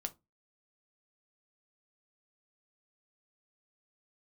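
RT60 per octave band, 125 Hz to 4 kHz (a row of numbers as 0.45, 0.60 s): 0.35, 0.30, 0.25, 0.20, 0.15, 0.15 s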